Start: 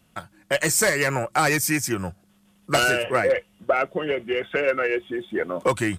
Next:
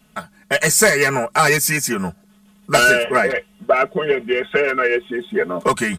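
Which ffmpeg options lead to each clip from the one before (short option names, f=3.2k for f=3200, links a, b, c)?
-af "aecho=1:1:4.7:0.99,volume=3dB"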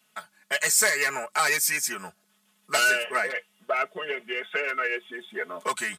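-af "highpass=f=1.4k:p=1,volume=-5dB"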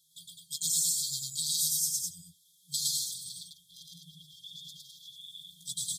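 -filter_complex "[0:a]afftfilt=real='re*(1-between(b*sr/4096,180,3200))':imag='im*(1-between(b*sr/4096,180,3200))':win_size=4096:overlap=0.75,acompressor=threshold=-30dB:ratio=6,asplit=2[a][b];[b]aecho=0:1:110.8|207:1|0.708[c];[a][c]amix=inputs=2:normalize=0,volume=1dB"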